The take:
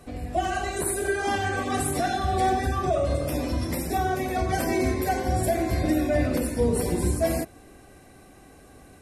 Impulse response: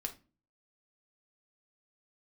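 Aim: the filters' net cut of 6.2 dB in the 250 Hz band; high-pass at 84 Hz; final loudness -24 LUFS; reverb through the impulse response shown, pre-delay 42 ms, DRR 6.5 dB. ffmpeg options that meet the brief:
-filter_complex "[0:a]highpass=84,equalizer=f=250:t=o:g=-8.5,asplit=2[a][b];[1:a]atrim=start_sample=2205,adelay=42[c];[b][c]afir=irnorm=-1:irlink=0,volume=-6dB[d];[a][d]amix=inputs=2:normalize=0,volume=2.5dB"

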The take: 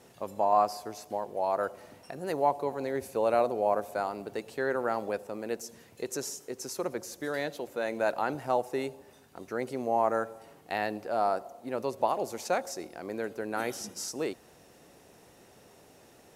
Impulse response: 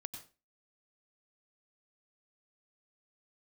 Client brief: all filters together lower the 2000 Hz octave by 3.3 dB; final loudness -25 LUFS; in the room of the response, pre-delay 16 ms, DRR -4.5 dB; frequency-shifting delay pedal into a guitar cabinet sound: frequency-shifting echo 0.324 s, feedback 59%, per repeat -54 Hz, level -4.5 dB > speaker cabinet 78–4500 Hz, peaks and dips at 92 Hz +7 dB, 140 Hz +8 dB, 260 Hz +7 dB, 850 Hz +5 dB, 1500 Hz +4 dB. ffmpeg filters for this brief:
-filter_complex "[0:a]equalizer=f=2k:t=o:g=-9,asplit=2[a][b];[1:a]atrim=start_sample=2205,adelay=16[c];[b][c]afir=irnorm=-1:irlink=0,volume=7.5dB[d];[a][d]amix=inputs=2:normalize=0,asplit=9[e][f][g][h][i][j][k][l][m];[f]adelay=324,afreqshift=-54,volume=-4.5dB[n];[g]adelay=648,afreqshift=-108,volume=-9.1dB[o];[h]adelay=972,afreqshift=-162,volume=-13.7dB[p];[i]adelay=1296,afreqshift=-216,volume=-18.2dB[q];[j]adelay=1620,afreqshift=-270,volume=-22.8dB[r];[k]adelay=1944,afreqshift=-324,volume=-27.4dB[s];[l]adelay=2268,afreqshift=-378,volume=-32dB[t];[m]adelay=2592,afreqshift=-432,volume=-36.6dB[u];[e][n][o][p][q][r][s][t][u]amix=inputs=9:normalize=0,highpass=78,equalizer=f=92:t=q:w=4:g=7,equalizer=f=140:t=q:w=4:g=8,equalizer=f=260:t=q:w=4:g=7,equalizer=f=850:t=q:w=4:g=5,equalizer=f=1.5k:t=q:w=4:g=4,lowpass=f=4.5k:w=0.5412,lowpass=f=4.5k:w=1.3066,volume=-1.5dB"

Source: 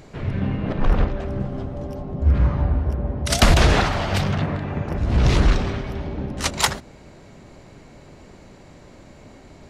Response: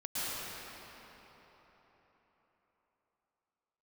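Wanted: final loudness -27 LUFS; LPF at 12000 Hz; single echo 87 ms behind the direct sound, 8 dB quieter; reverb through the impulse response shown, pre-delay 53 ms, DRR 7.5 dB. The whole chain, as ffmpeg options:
-filter_complex "[0:a]lowpass=12k,aecho=1:1:87:0.398,asplit=2[a][b];[1:a]atrim=start_sample=2205,adelay=53[c];[b][c]afir=irnorm=-1:irlink=0,volume=-14dB[d];[a][d]amix=inputs=2:normalize=0,volume=-6dB"

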